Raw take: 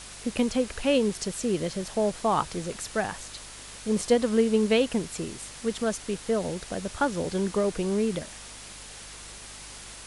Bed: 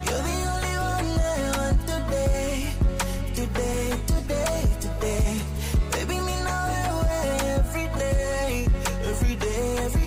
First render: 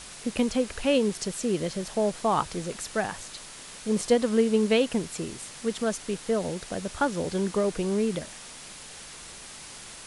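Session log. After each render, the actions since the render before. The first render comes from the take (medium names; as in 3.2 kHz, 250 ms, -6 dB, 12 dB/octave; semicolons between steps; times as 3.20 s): de-hum 50 Hz, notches 2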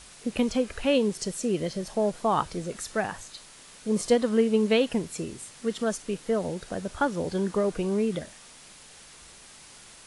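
noise print and reduce 6 dB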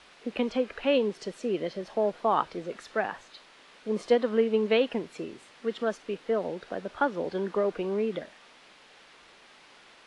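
three-band isolator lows -16 dB, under 240 Hz, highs -23 dB, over 4.1 kHz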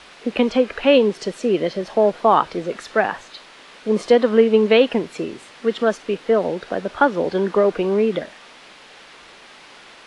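trim +10.5 dB; peak limiter -3 dBFS, peak gain reduction 3 dB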